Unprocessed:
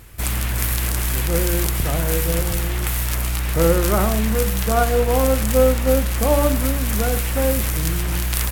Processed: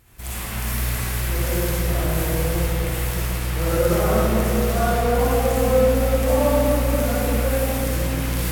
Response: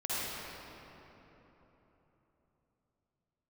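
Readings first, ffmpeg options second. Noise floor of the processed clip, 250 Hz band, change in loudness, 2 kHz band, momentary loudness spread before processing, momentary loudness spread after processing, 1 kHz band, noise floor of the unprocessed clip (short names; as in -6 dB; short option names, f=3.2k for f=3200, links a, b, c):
-28 dBFS, -0.5 dB, -1.5 dB, -1.5 dB, 6 LU, 6 LU, -0.5 dB, -22 dBFS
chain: -filter_complex "[0:a]bandreject=f=50.99:t=h:w=4,bandreject=f=101.98:t=h:w=4,bandreject=f=152.97:t=h:w=4,bandreject=f=203.96:t=h:w=4,bandreject=f=254.95:t=h:w=4,bandreject=f=305.94:t=h:w=4,bandreject=f=356.93:t=h:w=4,bandreject=f=407.92:t=h:w=4,bandreject=f=458.91:t=h:w=4,bandreject=f=509.9:t=h:w=4,bandreject=f=560.89:t=h:w=4,bandreject=f=611.88:t=h:w=4,bandreject=f=662.87:t=h:w=4,bandreject=f=713.86:t=h:w=4,bandreject=f=764.85:t=h:w=4,bandreject=f=815.84:t=h:w=4,bandreject=f=866.83:t=h:w=4,bandreject=f=917.82:t=h:w=4,bandreject=f=968.81:t=h:w=4,bandreject=f=1.0198k:t=h:w=4,bandreject=f=1.07079k:t=h:w=4,bandreject=f=1.12178k:t=h:w=4,bandreject=f=1.17277k:t=h:w=4,bandreject=f=1.22376k:t=h:w=4,bandreject=f=1.27475k:t=h:w=4,bandreject=f=1.32574k:t=h:w=4,bandreject=f=1.37673k:t=h:w=4,bandreject=f=1.42772k:t=h:w=4,bandreject=f=1.47871k:t=h:w=4[a];[1:a]atrim=start_sample=2205[b];[a][b]afir=irnorm=-1:irlink=0,volume=-8dB"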